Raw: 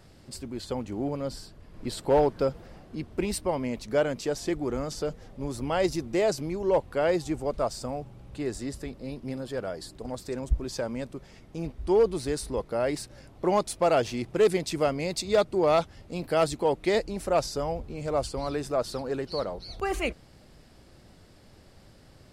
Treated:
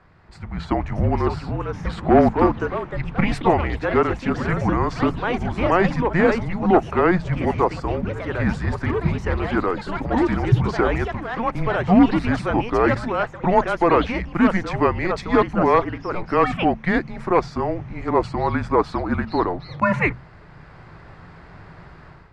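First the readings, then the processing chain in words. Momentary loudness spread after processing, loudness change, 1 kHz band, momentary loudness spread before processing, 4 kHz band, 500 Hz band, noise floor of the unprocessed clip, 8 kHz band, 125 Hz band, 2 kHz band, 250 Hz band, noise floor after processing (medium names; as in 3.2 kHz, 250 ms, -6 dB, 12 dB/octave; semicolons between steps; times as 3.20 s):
8 LU, +8.0 dB, +11.0 dB, 14 LU, +0.5 dB, +4.5 dB, -54 dBFS, no reading, +13.0 dB, +12.5 dB, +11.5 dB, -44 dBFS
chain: high-order bell 1.5 kHz +10.5 dB; hum notches 50/100/150/200/250/300/350/400 Hz; level rider; frequency shift -180 Hz; ever faster or slower copies 701 ms, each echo +4 st, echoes 3, each echo -6 dB; tape spacing loss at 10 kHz 26 dB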